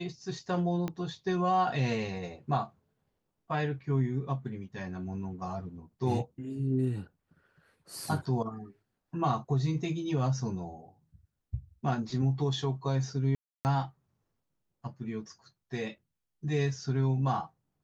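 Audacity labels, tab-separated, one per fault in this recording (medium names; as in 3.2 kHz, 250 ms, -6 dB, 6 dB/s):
0.880000	0.880000	pop -21 dBFS
13.350000	13.650000	dropout 299 ms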